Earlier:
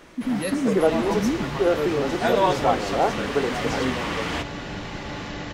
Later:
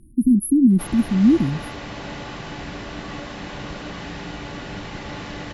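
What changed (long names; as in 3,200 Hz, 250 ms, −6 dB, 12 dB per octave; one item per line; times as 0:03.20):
speech +10.0 dB
first sound: muted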